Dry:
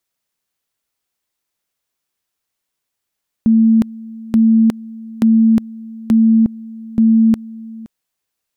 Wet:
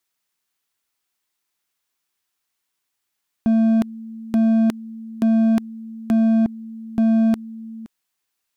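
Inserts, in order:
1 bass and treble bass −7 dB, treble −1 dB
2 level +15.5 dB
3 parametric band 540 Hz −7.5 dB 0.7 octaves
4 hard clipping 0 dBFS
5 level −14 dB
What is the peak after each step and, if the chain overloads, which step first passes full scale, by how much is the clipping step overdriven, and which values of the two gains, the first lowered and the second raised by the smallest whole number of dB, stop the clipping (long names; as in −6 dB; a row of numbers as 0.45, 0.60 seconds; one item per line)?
−8.0, +7.5, +7.0, 0.0, −14.0 dBFS
step 2, 7.0 dB
step 2 +8.5 dB, step 5 −7 dB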